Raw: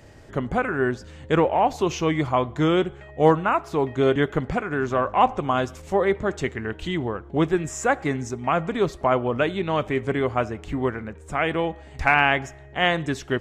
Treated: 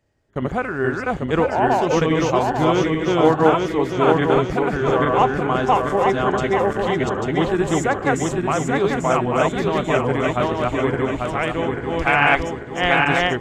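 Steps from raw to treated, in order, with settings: regenerating reverse delay 0.421 s, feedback 68%, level 0 dB; gate with hold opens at -26 dBFS

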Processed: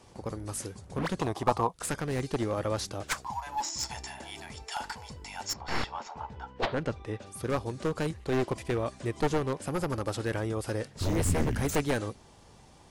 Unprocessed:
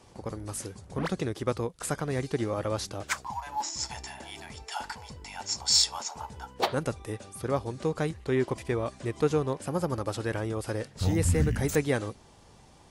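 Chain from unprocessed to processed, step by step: one-sided fold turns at -25.5 dBFS; 1.2–1.74 band shelf 870 Hz +14.5 dB 1 oct; 5.52–7.25 LPF 2000 Hz -> 4600 Hz 12 dB/oct

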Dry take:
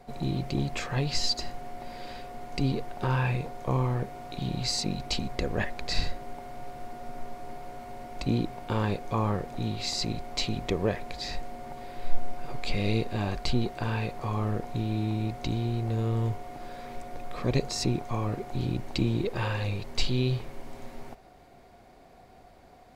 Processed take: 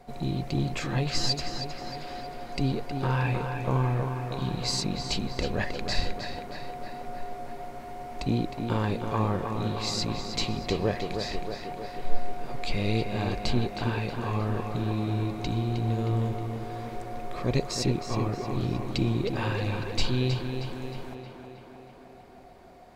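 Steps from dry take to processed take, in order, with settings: tape echo 0.314 s, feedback 72%, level -5 dB, low-pass 3700 Hz

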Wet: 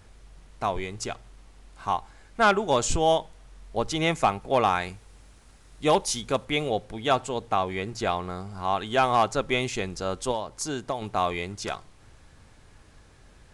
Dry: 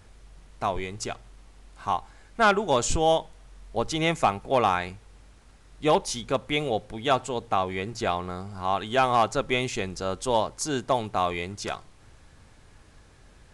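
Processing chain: 4.75–6.45 high shelf 6300 Hz +7 dB; 10.31–11.02 compressor 4:1, threshold -27 dBFS, peak gain reduction 8.5 dB

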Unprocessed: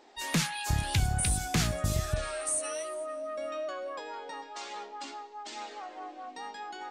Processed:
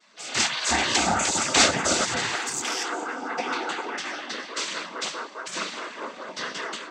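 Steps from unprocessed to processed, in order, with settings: AGC gain up to 9.5 dB; noise vocoder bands 16; spectral gate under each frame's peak -10 dB weak; 2.36–2.85 core saturation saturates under 2900 Hz; gain +6 dB

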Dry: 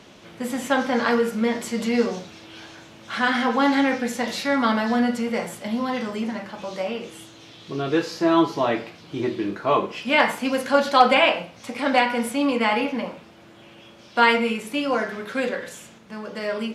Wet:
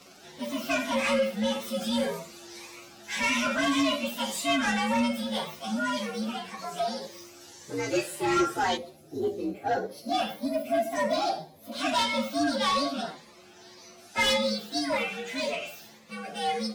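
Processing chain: inharmonic rescaling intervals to 123%; spectral gain 8.77–11.72, 830–10000 Hz -13 dB; overdrive pedal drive 19 dB, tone 5600 Hz, clips at -6.5 dBFS; cascading phaser rising 1.8 Hz; gain -7.5 dB

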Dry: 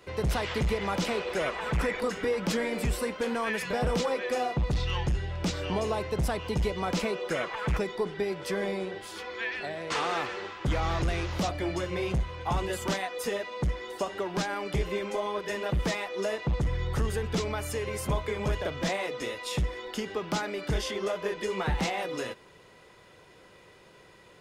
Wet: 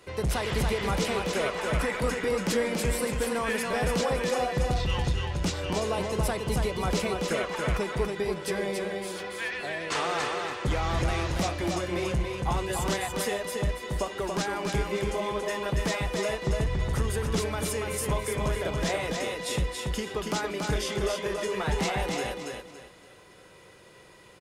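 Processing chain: bell 9900 Hz +6.5 dB 1 oct; feedback echo 0.282 s, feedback 29%, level -4 dB

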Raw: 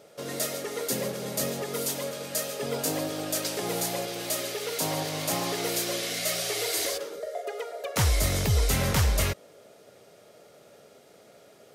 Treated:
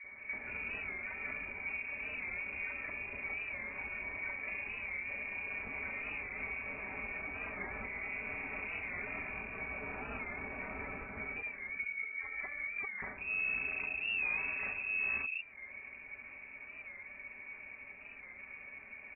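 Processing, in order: notch 2000 Hz, Q 12; comb 3.4 ms, depth 63%; limiter -20 dBFS, peak gain reduction 9.5 dB; compressor 6:1, threshold -41 dBFS, peak gain reduction 15.5 dB; wide varispeed 0.613×; three bands offset in time mids, highs, lows 40/190 ms, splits 240/1200 Hz; inverted band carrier 2600 Hz; record warp 45 rpm, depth 100 cents; gain +4.5 dB

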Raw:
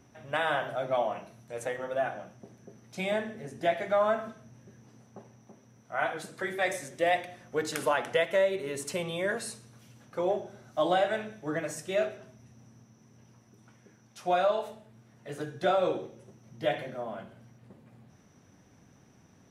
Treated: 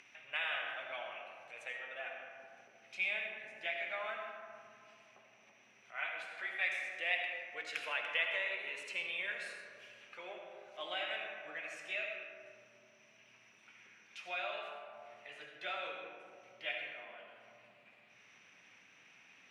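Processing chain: upward compressor, threshold -37 dBFS; band-pass 2500 Hz, Q 4.7; reverb RT60 2.5 s, pre-delay 40 ms, DRR 2 dB; gain +4.5 dB

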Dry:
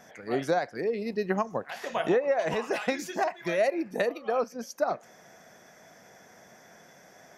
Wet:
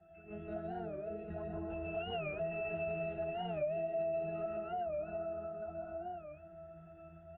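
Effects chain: monotone LPC vocoder at 8 kHz 210 Hz; bell 2600 Hz +5.5 dB 0.3 oct; octave resonator E, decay 0.75 s; echo 0.799 s -6.5 dB; reverb RT60 1.6 s, pre-delay 0.118 s, DRR -3.5 dB; compressor 4:1, threshold -50 dBFS, peak gain reduction 13 dB; 1.94–4.46 comb 7.3 ms, depth 56%; record warp 45 rpm, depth 160 cents; gain +12.5 dB

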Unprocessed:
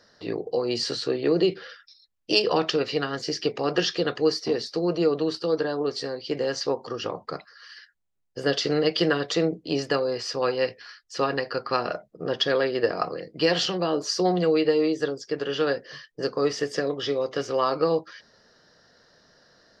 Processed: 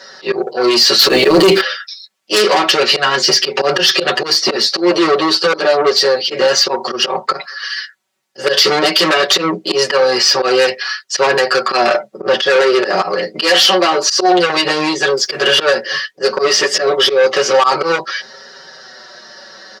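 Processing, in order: 13.42–14.5 low shelf 210 Hz -11 dB; 15.17–15.6 sample leveller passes 1; flange 0.27 Hz, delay 7.3 ms, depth 3 ms, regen -7%; auto swell 0.117 s; soft clip -29 dBFS, distortion -9 dB; weighting filter A; 0.99–1.61 sample leveller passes 3; comb 5.3 ms, depth 94%; maximiser +24 dB; gain -1 dB

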